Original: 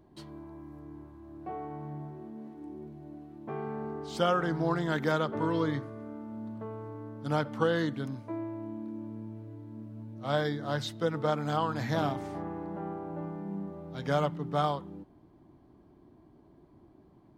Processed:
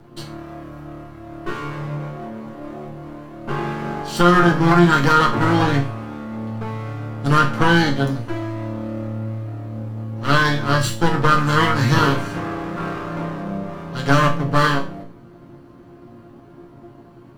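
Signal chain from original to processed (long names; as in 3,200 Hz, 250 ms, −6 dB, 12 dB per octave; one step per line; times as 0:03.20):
lower of the sound and its delayed copy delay 0.69 ms
resonators tuned to a chord A#2 minor, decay 0.34 s
boost into a limiter +32.5 dB
level −2 dB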